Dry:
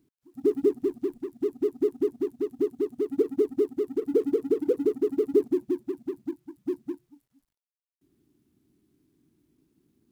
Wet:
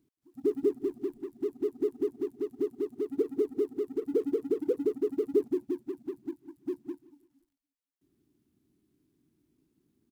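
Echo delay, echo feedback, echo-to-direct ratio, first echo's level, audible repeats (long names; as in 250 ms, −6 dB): 172 ms, 39%, −20.5 dB, −21.0 dB, 2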